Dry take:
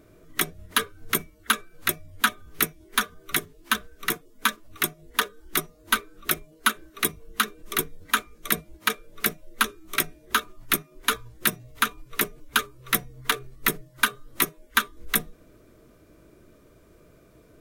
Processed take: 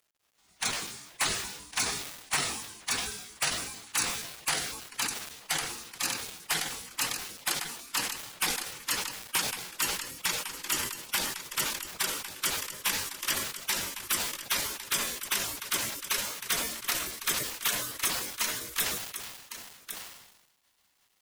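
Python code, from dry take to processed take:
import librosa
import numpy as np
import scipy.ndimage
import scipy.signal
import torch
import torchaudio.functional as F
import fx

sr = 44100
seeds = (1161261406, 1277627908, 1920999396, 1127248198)

p1 = fx.speed_glide(x, sr, from_pct=62, to_pct=104)
p2 = scipy.signal.lfilter([1.0, -0.97], [1.0], p1)
p3 = p2 + fx.echo_single(p2, sr, ms=1105, db=-17.0, dry=0)
p4 = fx.spec_gate(p3, sr, threshold_db=-15, keep='weak')
p5 = fx.high_shelf(p4, sr, hz=6000.0, db=-5.5)
p6 = fx.fold_sine(p5, sr, drive_db=16, ceiling_db=-15.5)
p7 = p5 + F.gain(torch.from_numpy(p6), -10.5).numpy()
p8 = fx.quant_companded(p7, sr, bits=6)
y = fx.sustainer(p8, sr, db_per_s=55.0)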